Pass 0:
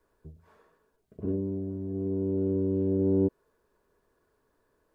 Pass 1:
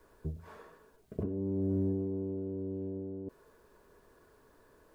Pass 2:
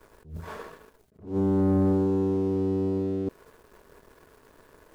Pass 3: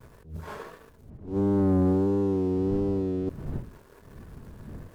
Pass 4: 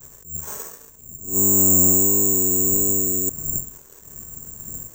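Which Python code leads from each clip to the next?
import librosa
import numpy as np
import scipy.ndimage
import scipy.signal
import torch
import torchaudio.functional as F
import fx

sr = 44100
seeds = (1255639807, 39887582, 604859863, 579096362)

y1 = fx.over_compress(x, sr, threshold_db=-37.0, ratio=-1.0)
y1 = y1 * 10.0 ** (1.5 / 20.0)
y2 = fx.leveller(y1, sr, passes=2)
y2 = fx.attack_slew(y2, sr, db_per_s=160.0)
y2 = y2 * 10.0 ** (5.5 / 20.0)
y3 = fx.dmg_wind(y2, sr, seeds[0], corner_hz=150.0, level_db=-42.0)
y3 = fx.vibrato(y3, sr, rate_hz=1.5, depth_cents=59.0)
y4 = (np.kron(y3[::6], np.eye(6)[0]) * 6)[:len(y3)]
y4 = y4 * 10.0 ** (-1.0 / 20.0)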